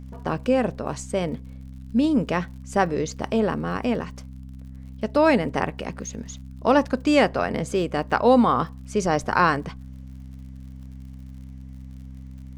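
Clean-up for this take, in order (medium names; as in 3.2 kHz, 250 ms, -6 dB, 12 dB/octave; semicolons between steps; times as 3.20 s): de-click; de-hum 65.4 Hz, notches 4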